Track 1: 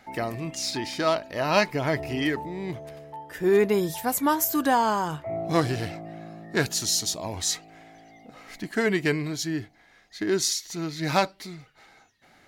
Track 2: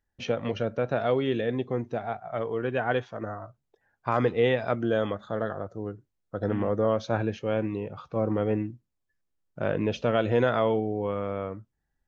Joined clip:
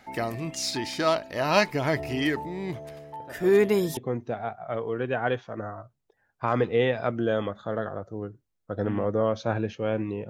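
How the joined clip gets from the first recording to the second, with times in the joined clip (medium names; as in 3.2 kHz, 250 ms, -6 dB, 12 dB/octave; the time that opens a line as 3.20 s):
track 1
3.20 s: add track 2 from 0.84 s 0.77 s -17 dB
3.97 s: go over to track 2 from 1.61 s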